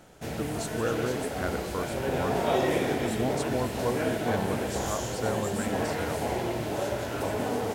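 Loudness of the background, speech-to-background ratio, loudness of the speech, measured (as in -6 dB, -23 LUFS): -30.5 LUFS, -4.5 dB, -35.0 LUFS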